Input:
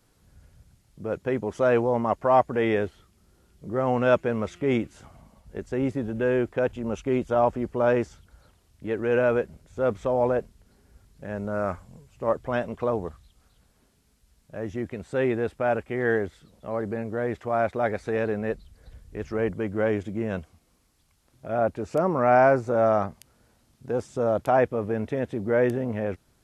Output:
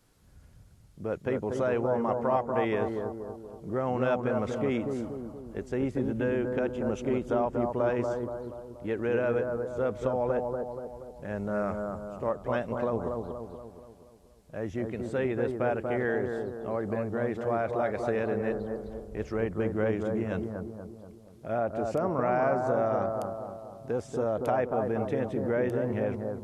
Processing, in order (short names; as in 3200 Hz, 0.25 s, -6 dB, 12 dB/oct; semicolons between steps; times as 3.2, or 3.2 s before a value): compressor 3:1, threshold -25 dBFS, peak gain reduction 8.5 dB; analogue delay 0.238 s, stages 2048, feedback 52%, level -4 dB; gain -1.5 dB